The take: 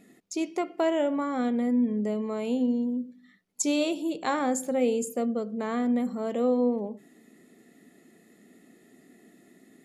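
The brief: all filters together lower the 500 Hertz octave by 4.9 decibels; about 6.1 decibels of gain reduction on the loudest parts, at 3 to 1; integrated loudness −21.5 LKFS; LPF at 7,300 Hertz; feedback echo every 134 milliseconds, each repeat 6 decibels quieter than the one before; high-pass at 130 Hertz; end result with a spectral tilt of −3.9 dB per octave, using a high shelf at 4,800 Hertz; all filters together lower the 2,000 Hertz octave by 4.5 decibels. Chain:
high-pass filter 130 Hz
low-pass filter 7,300 Hz
parametric band 500 Hz −5.5 dB
parametric band 2,000 Hz −7.5 dB
high-shelf EQ 4,800 Hz +9 dB
downward compressor 3 to 1, threshold −30 dBFS
repeating echo 134 ms, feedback 50%, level −6 dB
level +11 dB

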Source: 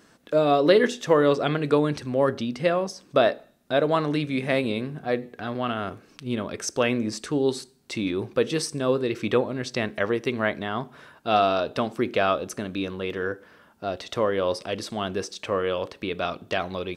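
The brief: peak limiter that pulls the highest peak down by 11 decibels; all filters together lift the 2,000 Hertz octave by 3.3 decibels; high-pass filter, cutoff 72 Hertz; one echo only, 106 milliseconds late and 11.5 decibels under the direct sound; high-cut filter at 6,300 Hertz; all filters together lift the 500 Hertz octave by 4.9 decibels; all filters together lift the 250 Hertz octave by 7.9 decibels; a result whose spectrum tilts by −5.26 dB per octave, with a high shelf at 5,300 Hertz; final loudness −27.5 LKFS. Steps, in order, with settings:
high-pass filter 72 Hz
low-pass filter 6,300 Hz
parametric band 250 Hz +8.5 dB
parametric band 500 Hz +3.5 dB
parametric band 2,000 Hz +4.5 dB
high-shelf EQ 5,300 Hz −4 dB
brickwall limiter −12 dBFS
single-tap delay 106 ms −11.5 dB
level −4 dB

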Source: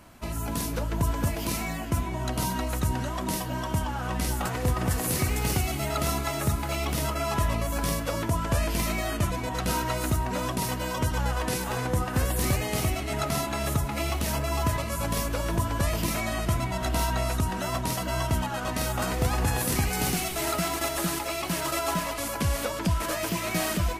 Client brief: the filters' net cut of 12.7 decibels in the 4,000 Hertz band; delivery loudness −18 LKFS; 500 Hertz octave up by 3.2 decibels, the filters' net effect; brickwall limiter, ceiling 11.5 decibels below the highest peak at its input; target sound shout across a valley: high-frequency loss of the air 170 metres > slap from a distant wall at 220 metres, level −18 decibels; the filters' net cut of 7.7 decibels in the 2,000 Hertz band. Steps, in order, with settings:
parametric band 500 Hz +5.5 dB
parametric band 2,000 Hz −6 dB
parametric band 4,000 Hz −8.5 dB
brickwall limiter −24 dBFS
high-frequency loss of the air 170 metres
slap from a distant wall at 220 metres, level −18 dB
level +16 dB

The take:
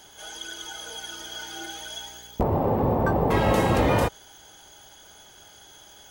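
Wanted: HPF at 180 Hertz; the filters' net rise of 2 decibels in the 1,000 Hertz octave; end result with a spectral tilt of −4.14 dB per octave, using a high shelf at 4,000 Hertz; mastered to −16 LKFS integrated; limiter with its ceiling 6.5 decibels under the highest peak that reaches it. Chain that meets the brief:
high-pass filter 180 Hz
parametric band 1,000 Hz +3 dB
high-shelf EQ 4,000 Hz −7.5 dB
level +12 dB
brickwall limiter −3.5 dBFS

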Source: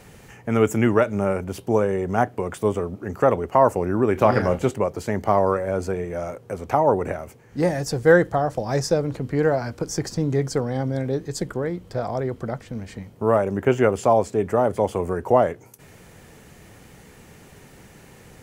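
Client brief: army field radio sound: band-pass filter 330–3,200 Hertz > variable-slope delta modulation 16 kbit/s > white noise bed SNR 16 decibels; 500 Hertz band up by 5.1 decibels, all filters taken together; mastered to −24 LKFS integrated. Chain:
band-pass filter 330–3,200 Hz
parametric band 500 Hz +7 dB
variable-slope delta modulation 16 kbit/s
white noise bed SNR 16 dB
level −3 dB

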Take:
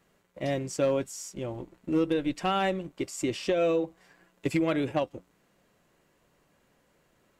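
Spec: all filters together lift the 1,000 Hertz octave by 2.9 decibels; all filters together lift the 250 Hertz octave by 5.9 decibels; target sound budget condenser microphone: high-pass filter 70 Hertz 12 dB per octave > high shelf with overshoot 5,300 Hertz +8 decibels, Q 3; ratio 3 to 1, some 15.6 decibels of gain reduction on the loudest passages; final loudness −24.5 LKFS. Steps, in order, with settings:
parametric band 250 Hz +8 dB
parametric band 1,000 Hz +4 dB
downward compressor 3 to 1, threshold −40 dBFS
high-pass filter 70 Hz 12 dB per octave
high shelf with overshoot 5,300 Hz +8 dB, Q 3
level +13.5 dB

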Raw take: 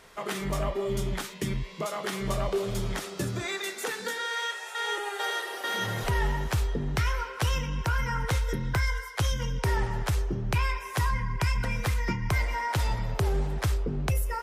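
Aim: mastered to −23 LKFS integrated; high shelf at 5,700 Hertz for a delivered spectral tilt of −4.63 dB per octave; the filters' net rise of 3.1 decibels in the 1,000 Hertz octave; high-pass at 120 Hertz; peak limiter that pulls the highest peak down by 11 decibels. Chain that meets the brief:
high-pass filter 120 Hz
parametric band 1,000 Hz +3.5 dB
high-shelf EQ 5,700 Hz +3.5 dB
level +11.5 dB
brickwall limiter −14.5 dBFS

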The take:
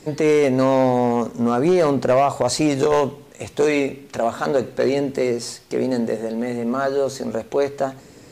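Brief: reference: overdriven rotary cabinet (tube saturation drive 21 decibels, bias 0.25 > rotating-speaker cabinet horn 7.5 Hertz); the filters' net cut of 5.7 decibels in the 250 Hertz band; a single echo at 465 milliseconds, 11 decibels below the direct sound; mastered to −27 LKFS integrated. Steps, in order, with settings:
parametric band 250 Hz −7 dB
single-tap delay 465 ms −11 dB
tube saturation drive 21 dB, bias 0.25
rotating-speaker cabinet horn 7.5 Hz
level +2 dB

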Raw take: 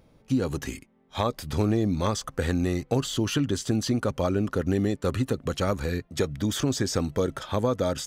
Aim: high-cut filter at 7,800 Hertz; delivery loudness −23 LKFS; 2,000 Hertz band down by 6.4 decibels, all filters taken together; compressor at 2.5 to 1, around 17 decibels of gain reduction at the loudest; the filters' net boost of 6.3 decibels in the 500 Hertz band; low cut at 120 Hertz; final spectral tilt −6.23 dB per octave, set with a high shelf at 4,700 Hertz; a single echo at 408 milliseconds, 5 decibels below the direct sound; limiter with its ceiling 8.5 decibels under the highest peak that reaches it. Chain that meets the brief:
high-pass filter 120 Hz
low-pass filter 7,800 Hz
parametric band 500 Hz +8 dB
parametric band 2,000 Hz −8 dB
high-shelf EQ 4,700 Hz −8.5 dB
downward compressor 2.5 to 1, threshold −43 dBFS
brickwall limiter −31 dBFS
single-tap delay 408 ms −5 dB
level +18.5 dB

